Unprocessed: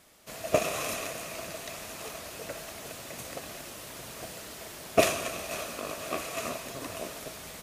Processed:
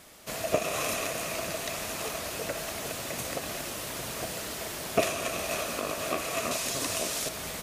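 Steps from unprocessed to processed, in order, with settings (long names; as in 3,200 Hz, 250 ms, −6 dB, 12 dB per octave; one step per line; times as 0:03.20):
0:06.51–0:07.29: parametric band 6,700 Hz +9.5 dB 2.4 octaves
downward compressor 2 to 1, threshold −37 dBFS, peak gain reduction 12 dB
level +7 dB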